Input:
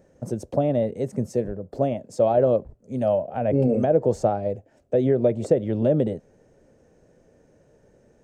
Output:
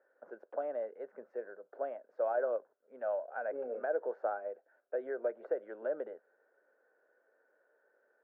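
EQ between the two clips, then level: HPF 430 Hz 24 dB/oct; ladder low-pass 1600 Hz, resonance 80%; -1.5 dB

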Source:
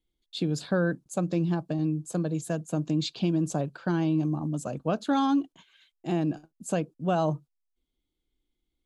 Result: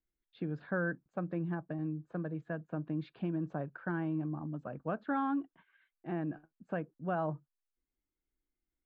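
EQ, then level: ladder low-pass 2000 Hz, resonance 50%; 0.0 dB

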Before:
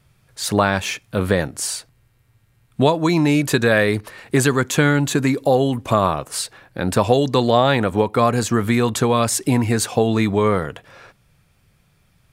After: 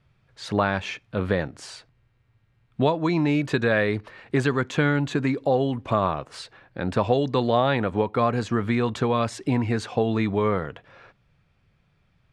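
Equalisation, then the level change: LPF 3600 Hz 12 dB/oct; -5.5 dB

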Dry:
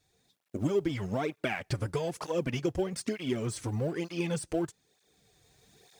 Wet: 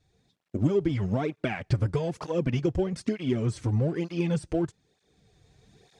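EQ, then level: air absorption 61 m; low shelf 280 Hz +9.5 dB; 0.0 dB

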